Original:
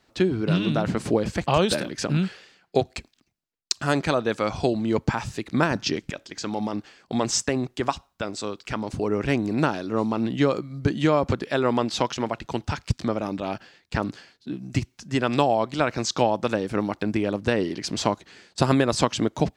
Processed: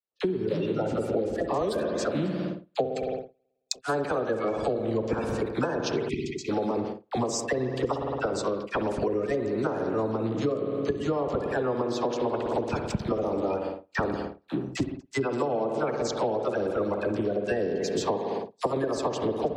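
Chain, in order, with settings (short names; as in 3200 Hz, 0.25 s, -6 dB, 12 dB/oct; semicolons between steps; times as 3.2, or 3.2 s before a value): bin magnitudes rounded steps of 30 dB; tape echo 67 ms, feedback 53%, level -16 dB, low-pass 1700 Hz; spring tank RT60 2 s, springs 54 ms, chirp 35 ms, DRR 5.5 dB; vocal rider within 3 dB 0.5 s; bell 470 Hz +11.5 dB 1.2 oct; gate -26 dBFS, range -37 dB; dispersion lows, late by 47 ms, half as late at 790 Hz; spectral delete 6.09–6.49, 440–1900 Hz; compressor 6:1, threshold -23 dBFS, peak gain reduction 15.5 dB; gain -1.5 dB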